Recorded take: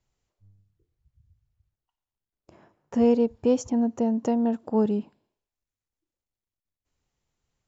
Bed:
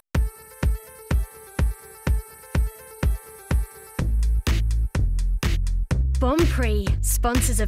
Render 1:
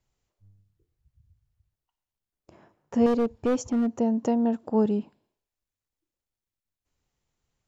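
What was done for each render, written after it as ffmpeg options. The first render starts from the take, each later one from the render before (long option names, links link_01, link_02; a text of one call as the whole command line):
ffmpeg -i in.wav -filter_complex "[0:a]asettb=1/sr,asplit=3[link_01][link_02][link_03];[link_01]atrim=end=3.064[link_04];[link_02]atrim=start=3.06:end=3.92,asetpts=PTS-STARTPTS,afade=type=in:duration=0.004:curve=qsin,afade=type=out:start_time=0.856:duration=0.004:curve=qsin,asoftclip=type=hard:threshold=-19.5dB[link_05];[link_03]atrim=start=3.916[link_06];[link_04][link_05]acrossfade=duration=0.004:curve1=hsin:curve2=qsin[link_07];[link_07][link_06]acrossfade=duration=0.004:curve1=qsin:curve2=hsin" out.wav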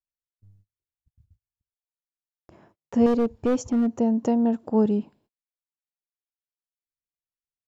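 ffmpeg -i in.wav -af "agate=range=-32dB:threshold=-60dB:ratio=16:detection=peak,lowshelf=frequency=380:gain=3.5" out.wav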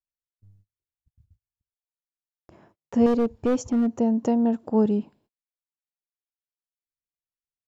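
ffmpeg -i in.wav -af anull out.wav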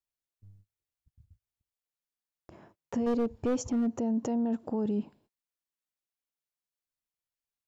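ffmpeg -i in.wav -af "acompressor=threshold=-23dB:ratio=3,alimiter=limit=-23dB:level=0:latency=1:release=11" out.wav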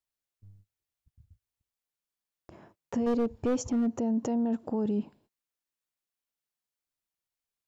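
ffmpeg -i in.wav -af "volume=1dB" out.wav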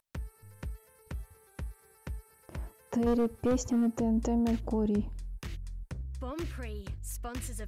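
ffmpeg -i in.wav -i bed.wav -filter_complex "[1:a]volume=-17.5dB[link_01];[0:a][link_01]amix=inputs=2:normalize=0" out.wav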